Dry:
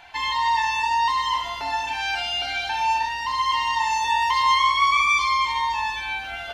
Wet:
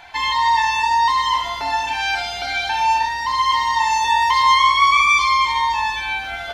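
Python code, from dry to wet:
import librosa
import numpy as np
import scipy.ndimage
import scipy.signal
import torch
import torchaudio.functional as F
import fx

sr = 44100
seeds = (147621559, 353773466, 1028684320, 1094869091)

y = fx.notch(x, sr, hz=2800.0, q=13.0)
y = y * 10.0 ** (5.0 / 20.0)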